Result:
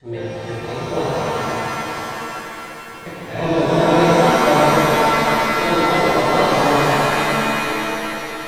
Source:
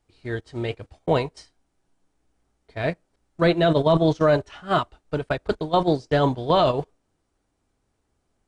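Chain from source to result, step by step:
slices reordered back to front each 170 ms, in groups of 4
reverb with rising layers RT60 3.7 s, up +7 semitones, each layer −2 dB, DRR −11 dB
level −8 dB

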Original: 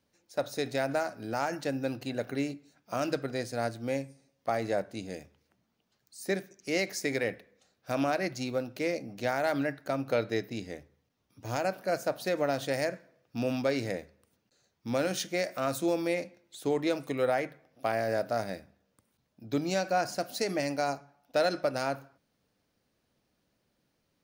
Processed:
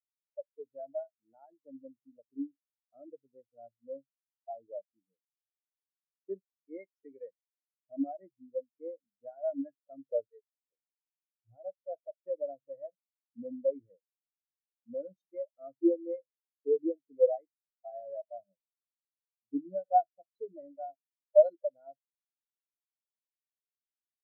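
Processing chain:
0:10.30–0:10.72: inverse Chebyshev high-pass filter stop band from 230 Hz, stop band 40 dB
every bin expanded away from the loudest bin 4 to 1
level +5.5 dB

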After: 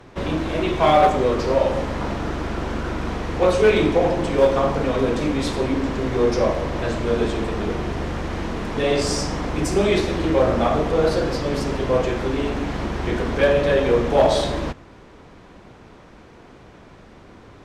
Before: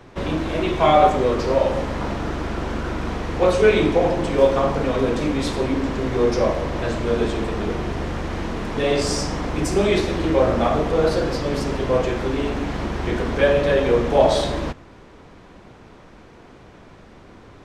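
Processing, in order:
asymmetric clip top −10 dBFS

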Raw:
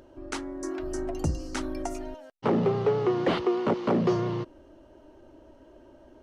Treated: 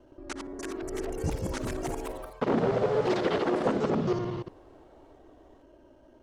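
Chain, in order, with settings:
reversed piece by piece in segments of 59 ms
delay with pitch and tempo change per echo 379 ms, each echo +3 semitones, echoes 3
level −3.5 dB

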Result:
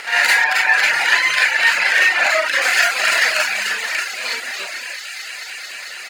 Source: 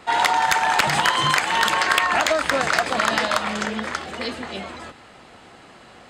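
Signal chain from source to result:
lower of the sound and its delayed copy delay 0.43 ms
high-pass filter 960 Hz 12 dB per octave
parametric band 1,600 Hz +6 dB 0.67 octaves
double-tracking delay 31 ms −12 dB
delay with a high-pass on its return 221 ms, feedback 85%, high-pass 2,900 Hz, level −9 dB
convolution reverb RT60 0.60 s, pre-delay 33 ms, DRR −9 dB
upward compression, threshold −20 dBFS
0:00.44–0:02.62: high-shelf EQ 5,200 Hz −10 dB
reverb reduction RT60 0.84 s
level −1 dB

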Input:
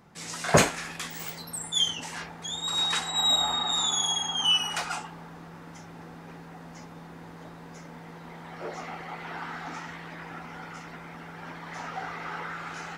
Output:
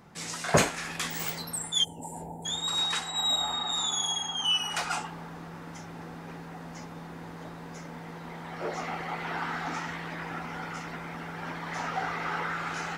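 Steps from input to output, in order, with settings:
speech leveller within 4 dB 0.5 s
gain on a spectral selection 0:01.84–0:02.46, 970–7,000 Hz −29 dB

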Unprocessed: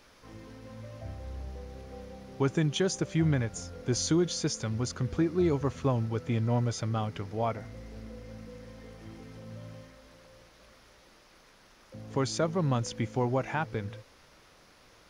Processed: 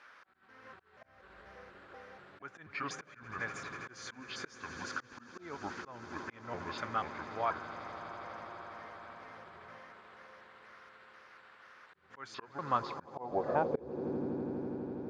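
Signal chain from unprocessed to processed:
pitch shifter gated in a rhythm −5.5 semitones, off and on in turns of 242 ms
low-shelf EQ 240 Hz +2.5 dB
on a send: echo that builds up and dies away 82 ms, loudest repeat 8, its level −18 dB
on the sum: volume swells 330 ms
band-pass filter sweep 1,500 Hz → 320 Hz, 0:12.52–0:14.20
level +8 dB

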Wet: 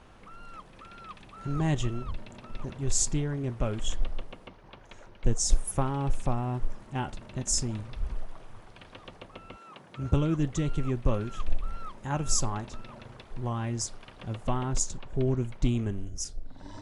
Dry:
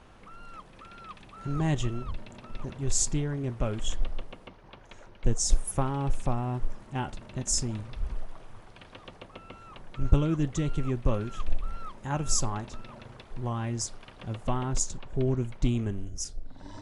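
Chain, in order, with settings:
0:09.56–0:10.15: high-pass filter 250 Hz → 58 Hz 24 dB per octave

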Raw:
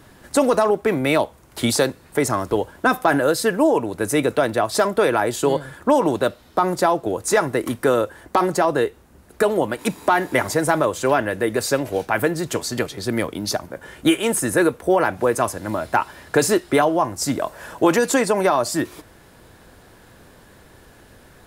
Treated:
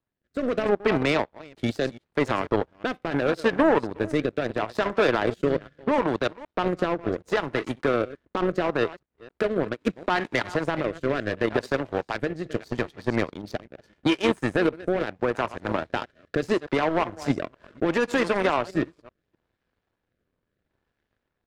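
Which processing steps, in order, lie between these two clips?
delay that plays each chunk backwards 258 ms, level −13 dB
low-pass filter 3,400 Hz 12 dB per octave
brickwall limiter −12 dBFS, peak gain reduction 9 dB
automatic gain control gain up to 3.5 dB
power curve on the samples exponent 2
rotating-speaker cabinet horn 0.75 Hz

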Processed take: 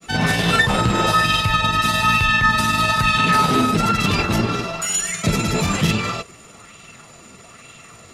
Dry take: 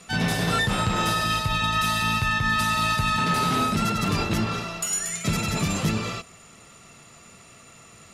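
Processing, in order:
granular cloud 100 ms, spray 18 ms, pitch spread up and down by 0 semitones
auto-filter bell 1.1 Hz 290–3,200 Hz +7 dB
level +6 dB

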